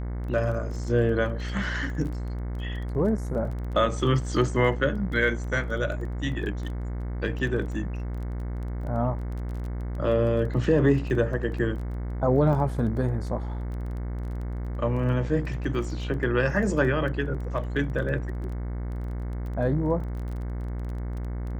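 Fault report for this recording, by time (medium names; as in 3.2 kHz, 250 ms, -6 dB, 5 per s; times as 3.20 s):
buzz 60 Hz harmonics 37 -31 dBFS
crackle 18 per s -35 dBFS
12.53 s: dropout 2.2 ms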